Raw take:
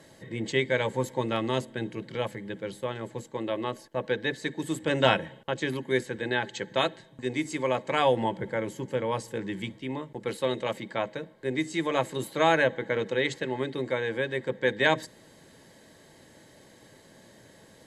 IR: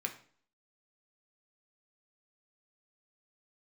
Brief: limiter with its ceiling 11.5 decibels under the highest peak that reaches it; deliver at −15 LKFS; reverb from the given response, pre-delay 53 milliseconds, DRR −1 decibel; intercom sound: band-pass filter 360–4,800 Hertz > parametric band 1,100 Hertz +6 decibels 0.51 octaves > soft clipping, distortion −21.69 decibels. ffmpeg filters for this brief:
-filter_complex "[0:a]alimiter=limit=-18dB:level=0:latency=1,asplit=2[link_01][link_02];[1:a]atrim=start_sample=2205,adelay=53[link_03];[link_02][link_03]afir=irnorm=-1:irlink=0,volume=-0.5dB[link_04];[link_01][link_04]amix=inputs=2:normalize=0,highpass=360,lowpass=4800,equalizer=frequency=1100:width_type=o:width=0.51:gain=6,asoftclip=threshold=-17.5dB,volume=15.5dB"

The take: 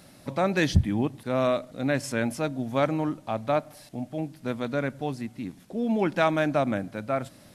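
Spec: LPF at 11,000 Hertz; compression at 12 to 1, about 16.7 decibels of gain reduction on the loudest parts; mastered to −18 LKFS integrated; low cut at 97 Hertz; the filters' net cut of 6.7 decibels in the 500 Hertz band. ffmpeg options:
ffmpeg -i in.wav -af "highpass=97,lowpass=11000,equalizer=frequency=500:width_type=o:gain=-9,acompressor=threshold=-34dB:ratio=12,volume=21.5dB" out.wav

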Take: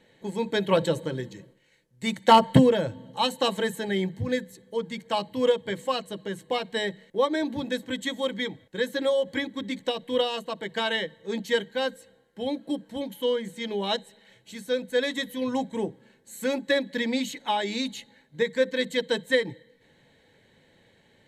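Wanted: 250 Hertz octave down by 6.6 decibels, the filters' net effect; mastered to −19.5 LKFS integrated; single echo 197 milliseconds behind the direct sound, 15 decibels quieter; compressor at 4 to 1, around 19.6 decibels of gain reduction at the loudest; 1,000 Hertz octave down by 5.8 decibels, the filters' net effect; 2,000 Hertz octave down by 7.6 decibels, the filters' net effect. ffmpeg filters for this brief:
ffmpeg -i in.wav -af "equalizer=frequency=250:width_type=o:gain=-7.5,equalizer=frequency=1000:width_type=o:gain=-5,equalizer=frequency=2000:width_type=o:gain=-7.5,acompressor=threshold=-41dB:ratio=4,aecho=1:1:197:0.178,volume=24dB" out.wav

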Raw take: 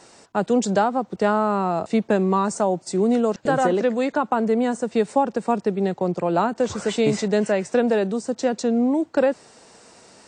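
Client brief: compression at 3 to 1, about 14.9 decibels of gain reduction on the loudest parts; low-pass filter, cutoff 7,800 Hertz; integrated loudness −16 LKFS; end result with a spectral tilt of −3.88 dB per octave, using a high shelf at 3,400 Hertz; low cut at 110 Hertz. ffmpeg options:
ffmpeg -i in.wav -af "highpass=110,lowpass=7800,highshelf=frequency=3400:gain=-3.5,acompressor=threshold=-36dB:ratio=3,volume=19.5dB" out.wav

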